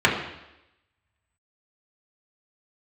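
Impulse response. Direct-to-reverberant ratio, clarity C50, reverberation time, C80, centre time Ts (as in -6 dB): -4.0 dB, 6.0 dB, 0.90 s, 8.0 dB, 34 ms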